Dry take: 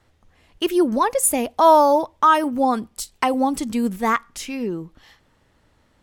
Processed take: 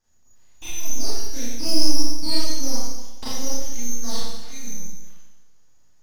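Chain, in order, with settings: frequency inversion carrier 3.4 kHz; full-wave rectifier; Schroeder reverb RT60 1.1 s, combs from 26 ms, DRR -9.5 dB; trim -15 dB

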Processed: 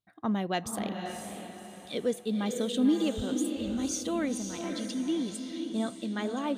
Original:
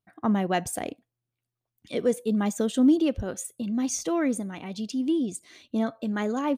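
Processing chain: peaking EQ 3.7 kHz +10 dB 0.56 oct; echo that smears into a reverb 526 ms, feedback 40%, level -5.5 dB; trim -5.5 dB

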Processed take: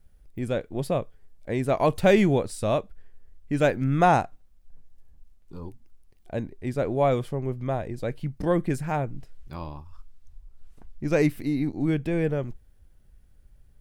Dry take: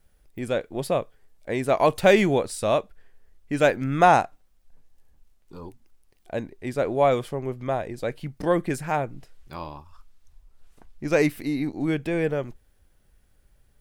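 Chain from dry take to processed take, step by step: bass shelf 250 Hz +11 dB; trim -4.5 dB

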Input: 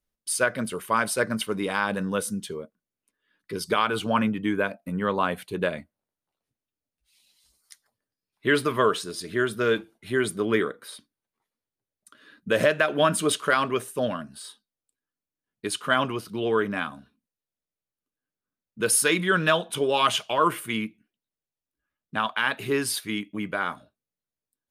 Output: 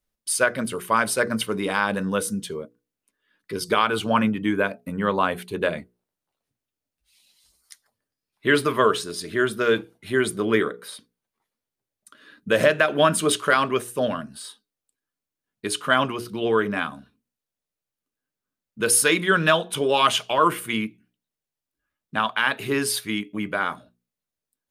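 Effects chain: hum notches 60/120/180/240/300/360/420/480 Hz; trim +3 dB

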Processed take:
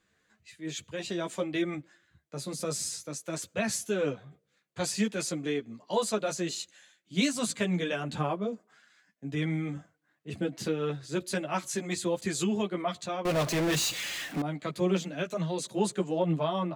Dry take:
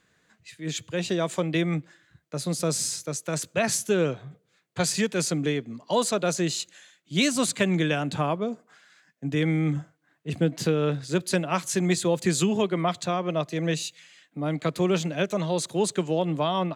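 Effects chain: chorus voices 6, 0.51 Hz, delay 12 ms, depth 2.9 ms; 13.25–14.42 s: power-law waveshaper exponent 0.35; trim -3 dB

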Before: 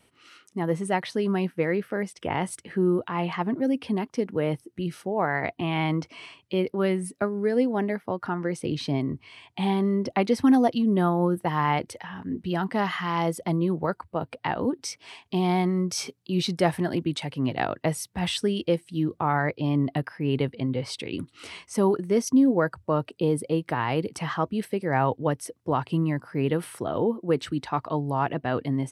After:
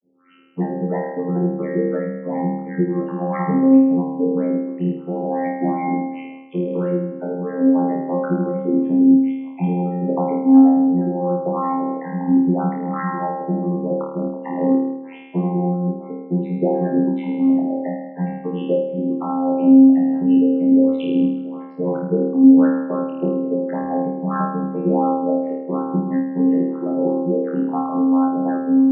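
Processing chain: treble shelf 2.2 kHz -4 dB; compression 6:1, threshold -29 dBFS, peak gain reduction 13.5 dB; waveshaping leveller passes 2; LFO low-pass saw up 2.9 Hz 280–3700 Hz; vocoder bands 32, saw 88.9 Hz; loudest bins only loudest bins 32; 1.88–2.33 s: comb of notches 400 Hz; flutter echo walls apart 4.5 m, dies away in 0.98 s; on a send at -17 dB: reverberation RT60 0.40 s, pre-delay 62 ms; on the sum: random flutter of the level, depth 50%; trim +5 dB

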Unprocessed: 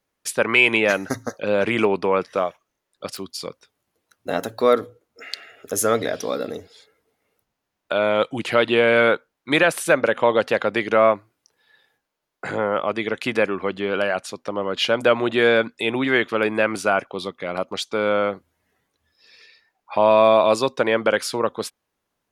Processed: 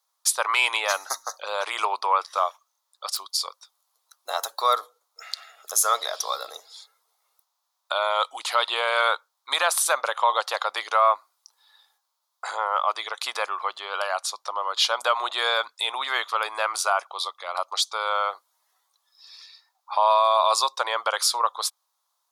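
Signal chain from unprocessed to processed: high-pass 920 Hz 24 dB/octave; high-order bell 2.1 kHz -13.5 dB 1.2 oct; peak limiter -16 dBFS, peak gain reduction 7.5 dB; trim +7 dB

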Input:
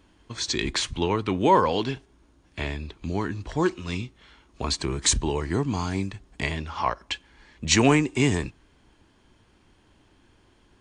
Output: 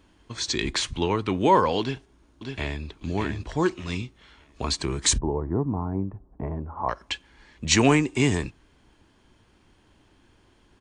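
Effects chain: 1.81–2.83 s: echo throw 600 ms, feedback 25%, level -5.5 dB; 5.18–6.89 s: low-pass 1 kHz 24 dB/octave

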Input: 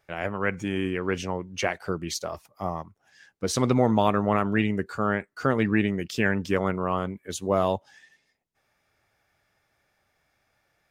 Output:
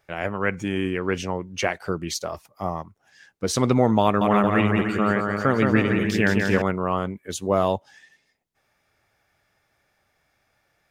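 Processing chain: 4.04–6.62 s: bouncing-ball echo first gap 170 ms, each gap 0.75×, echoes 5; trim +2.5 dB

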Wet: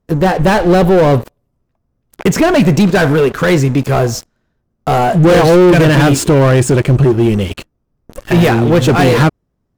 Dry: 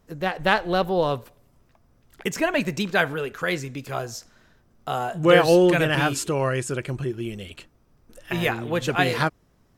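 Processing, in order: one-sided clip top -11 dBFS, bottom -7 dBFS; waveshaping leveller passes 5; tilt shelf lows +5 dB, about 880 Hz

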